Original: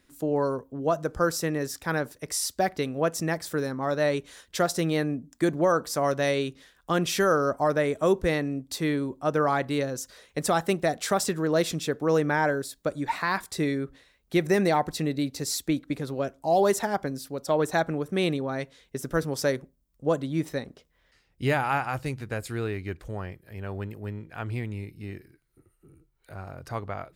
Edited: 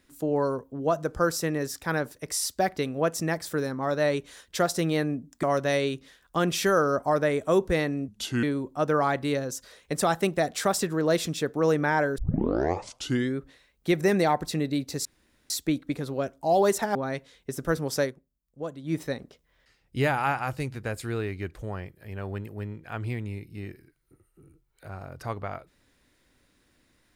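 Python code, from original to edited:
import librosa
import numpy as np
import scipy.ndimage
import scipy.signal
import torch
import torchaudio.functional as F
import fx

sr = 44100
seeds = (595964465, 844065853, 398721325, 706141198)

y = fx.edit(x, sr, fx.cut(start_s=5.43, length_s=0.54),
    fx.speed_span(start_s=8.62, length_s=0.27, speed=0.77),
    fx.tape_start(start_s=12.64, length_s=1.18),
    fx.insert_room_tone(at_s=15.51, length_s=0.45),
    fx.cut(start_s=16.96, length_s=1.45),
    fx.fade_down_up(start_s=19.43, length_s=1.02, db=-10.0, fade_s=0.16, curve='qsin'), tone=tone)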